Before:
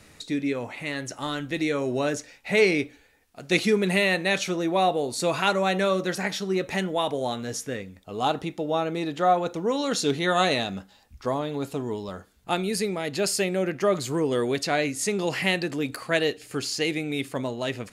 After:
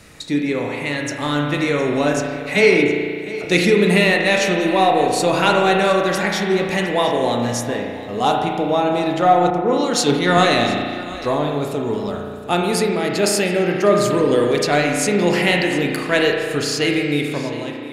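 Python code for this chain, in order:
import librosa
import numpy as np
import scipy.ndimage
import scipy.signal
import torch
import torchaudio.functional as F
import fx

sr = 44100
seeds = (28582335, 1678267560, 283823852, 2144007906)

p1 = fx.fade_out_tail(x, sr, length_s=0.82)
p2 = fx.dispersion(p1, sr, late='lows', ms=41.0, hz=1700.0, at=(2.13, 3.45))
p3 = 10.0 ** (-21.5 / 20.0) * np.tanh(p2 / 10.0 ** (-21.5 / 20.0))
p4 = p2 + (p3 * librosa.db_to_amplitude(-9.5))
p5 = p4 + 10.0 ** (-16.5 / 20.0) * np.pad(p4, (int(711 * sr / 1000.0), 0))[:len(p4)]
p6 = fx.rev_spring(p5, sr, rt60_s=1.9, pass_ms=(34,), chirp_ms=60, drr_db=1.0)
p7 = fx.band_widen(p6, sr, depth_pct=70, at=(9.5, 10.38))
y = p7 * librosa.db_to_amplitude(4.0)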